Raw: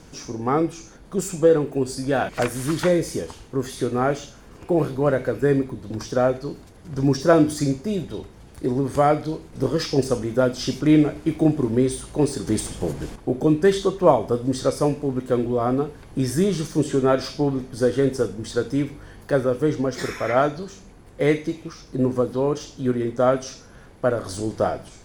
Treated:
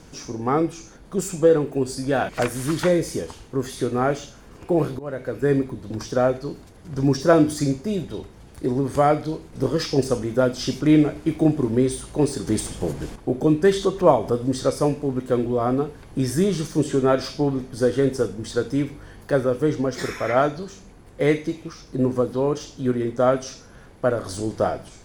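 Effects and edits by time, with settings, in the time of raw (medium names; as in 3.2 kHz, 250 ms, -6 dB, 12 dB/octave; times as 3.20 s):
4.99–5.54 s: fade in, from -19 dB
13.66–14.47 s: upward compressor, threshold -23 dBFS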